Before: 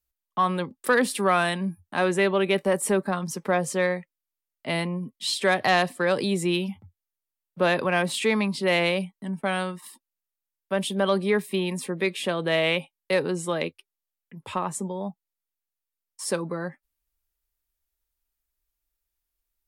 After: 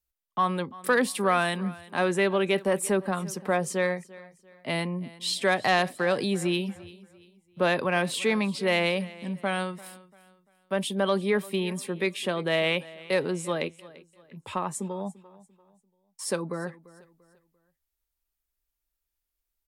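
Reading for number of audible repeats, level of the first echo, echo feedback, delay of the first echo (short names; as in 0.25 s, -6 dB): 2, -20.0 dB, 35%, 0.343 s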